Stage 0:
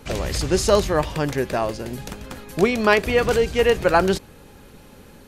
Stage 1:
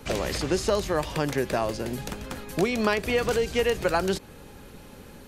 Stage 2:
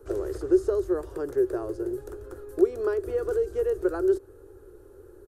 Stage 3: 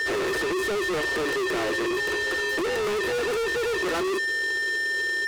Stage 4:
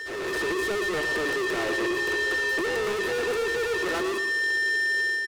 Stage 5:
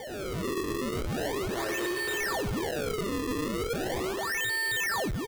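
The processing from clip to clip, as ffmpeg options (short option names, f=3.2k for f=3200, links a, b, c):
-filter_complex "[0:a]acrossover=split=170|3600[a][b][c];[a]acompressor=threshold=-36dB:ratio=4[d];[b]acompressor=threshold=-22dB:ratio=4[e];[c]acompressor=threshold=-36dB:ratio=4[f];[d][e][f]amix=inputs=3:normalize=0"
-af "firequalizer=gain_entry='entry(100,0);entry(190,-30);entry(360,13);entry(570,-5);entry(890,-11);entry(1400,-3);entry(2200,-24);entry(8900,-8)':delay=0.05:min_phase=1,volume=-4.5dB"
-filter_complex "[0:a]aeval=exprs='val(0)+0.00794*sin(2*PI*1800*n/s)':c=same,asplit=2[a][b];[b]highpass=f=720:p=1,volume=33dB,asoftclip=type=tanh:threshold=-8.5dB[c];[a][c]amix=inputs=2:normalize=0,lowpass=f=3.8k:p=1,volume=-6dB,asoftclip=type=tanh:threshold=-25dB"
-af "dynaudnorm=f=100:g=5:m=7dB,aecho=1:1:115|230|345|460:0.355|0.138|0.054|0.021,volume=-9dB"
-af "acrusher=samples=33:mix=1:aa=0.000001:lfo=1:lforange=52.8:lforate=0.38,volume=-4.5dB"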